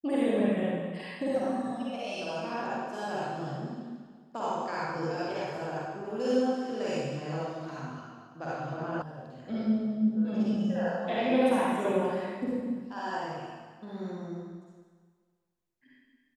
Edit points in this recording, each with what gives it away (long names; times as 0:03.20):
0:09.02: cut off before it has died away